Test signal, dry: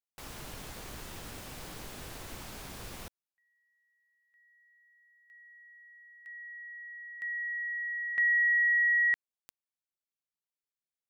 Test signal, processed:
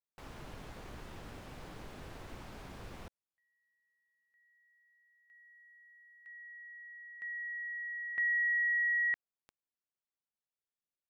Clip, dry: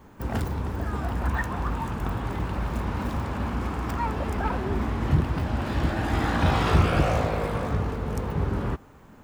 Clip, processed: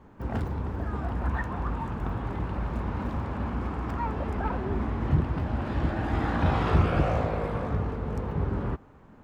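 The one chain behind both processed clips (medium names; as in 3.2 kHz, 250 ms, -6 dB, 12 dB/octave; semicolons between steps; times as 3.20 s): low-pass 1.8 kHz 6 dB/octave; trim -2 dB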